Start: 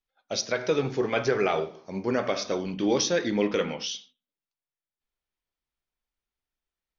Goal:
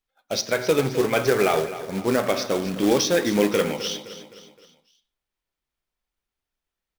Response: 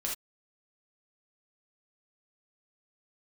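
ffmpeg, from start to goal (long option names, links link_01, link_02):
-filter_complex "[0:a]highshelf=frequency=4800:gain=-3.5,acrusher=bits=3:mode=log:mix=0:aa=0.000001,asplit=2[link_01][link_02];[link_02]aecho=0:1:259|518|777|1036:0.211|0.0972|0.0447|0.0206[link_03];[link_01][link_03]amix=inputs=2:normalize=0,volume=4.5dB"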